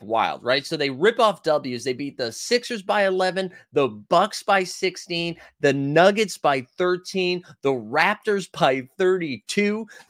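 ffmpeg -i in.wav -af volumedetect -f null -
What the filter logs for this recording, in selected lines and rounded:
mean_volume: -22.4 dB
max_volume: -3.5 dB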